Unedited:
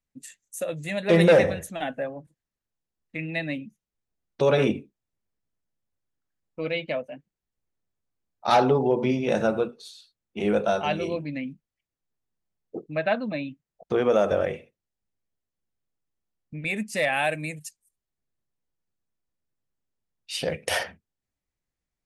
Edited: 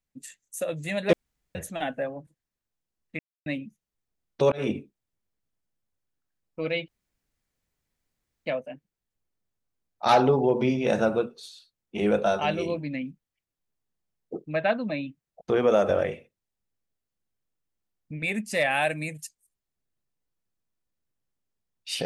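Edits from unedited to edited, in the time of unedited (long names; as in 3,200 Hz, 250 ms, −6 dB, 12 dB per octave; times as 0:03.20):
0:01.13–0:01.55: fill with room tone
0:03.19–0:03.46: silence
0:04.52–0:04.77: fade in
0:06.88: splice in room tone 1.58 s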